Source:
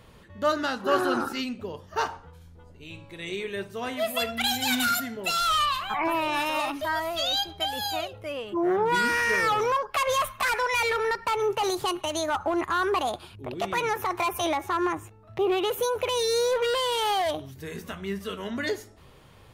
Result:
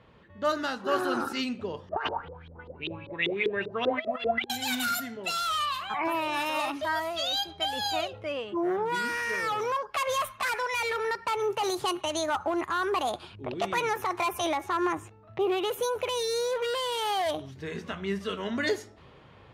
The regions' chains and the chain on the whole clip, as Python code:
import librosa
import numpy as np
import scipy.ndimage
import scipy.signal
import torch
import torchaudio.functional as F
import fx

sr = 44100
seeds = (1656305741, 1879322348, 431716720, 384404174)

y = fx.chain(x, sr, fx.over_compress(threshold_db=-31.0, ratio=-0.5),
    fx.filter_lfo_lowpass(shape='saw_up', hz=5.1, low_hz=350.0, high_hz=3800.0, q=6.4), at=(1.89, 4.5))
y = fx.env_lowpass(y, sr, base_hz=2800.0, full_db=-23.0)
y = fx.highpass(y, sr, hz=99.0, slope=6)
y = fx.rider(y, sr, range_db=4, speed_s=0.5)
y = y * librosa.db_to_amplitude(-2.5)